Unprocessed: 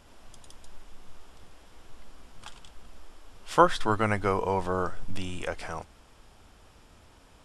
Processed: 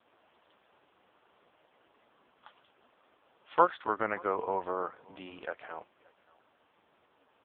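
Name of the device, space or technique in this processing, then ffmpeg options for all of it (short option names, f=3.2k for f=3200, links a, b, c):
satellite phone: -af "highpass=320,lowpass=3.3k,aecho=1:1:573:0.0631,volume=-3dB" -ar 8000 -c:a libopencore_amrnb -b:a 5150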